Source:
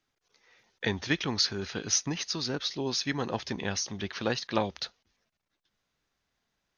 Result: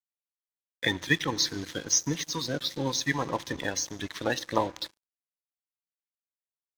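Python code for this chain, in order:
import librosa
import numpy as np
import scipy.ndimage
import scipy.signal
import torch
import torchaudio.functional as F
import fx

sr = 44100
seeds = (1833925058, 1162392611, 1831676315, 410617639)

y = fx.spec_quant(x, sr, step_db=30)
y = fx.ripple_eq(y, sr, per_octave=1.1, db=8)
y = fx.rev_fdn(y, sr, rt60_s=1.4, lf_ratio=1.6, hf_ratio=1.0, size_ms=18.0, drr_db=16.5)
y = np.sign(y) * np.maximum(np.abs(y) - 10.0 ** (-43.5 / 20.0), 0.0)
y = y * 10.0 ** (2.5 / 20.0)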